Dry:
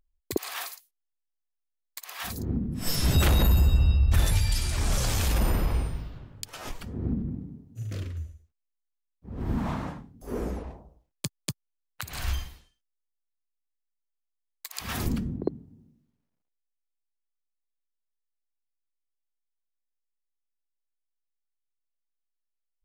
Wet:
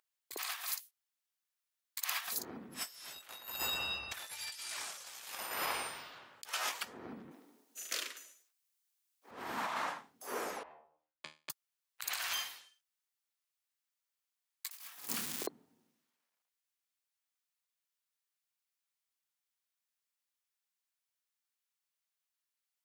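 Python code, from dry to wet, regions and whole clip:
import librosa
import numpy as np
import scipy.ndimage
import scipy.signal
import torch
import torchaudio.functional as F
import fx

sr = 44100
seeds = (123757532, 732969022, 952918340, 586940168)

y = fx.chain(x, sr, fx.highpass(hz=260.0, slope=24),
    fx.high_shelf(hz=3700.0, db=9.0), at=(7.31, 9.31))
y = fx.chain(y, sr, fx.lowpass(hz=2100.0, slope=12),
    fx.comb_fb(f0_hz=77.0, decay_s=0.29, harmonics='all', damping=0.0, mix_pct=90), at=(10.63, 11.5))
y = fx.chain(y, sr, fx.crossing_spikes(level_db=-27.0),
    fx.low_shelf(hz=100.0, db=7.5),
    fx.doubler(ms=28.0, db=-12), at=(14.71, 15.47))
y = scipy.signal.sosfilt(scipy.signal.butter(2, 990.0, 'highpass', fs=sr, output='sos'), y)
y = fx.over_compress(y, sr, threshold_db=-41.0, ratio=-0.5)
y = y * librosa.db_to_amplitude(1.5)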